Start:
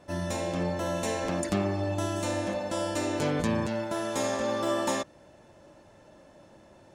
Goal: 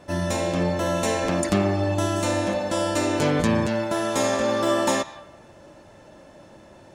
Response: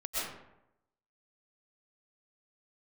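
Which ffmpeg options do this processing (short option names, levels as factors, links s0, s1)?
-filter_complex "[0:a]asplit=2[s0][s1];[s1]highpass=f=680:w=0.5412,highpass=f=680:w=1.3066[s2];[1:a]atrim=start_sample=2205,lowpass=4800[s3];[s2][s3]afir=irnorm=-1:irlink=0,volume=0.126[s4];[s0][s4]amix=inputs=2:normalize=0,volume=2.11"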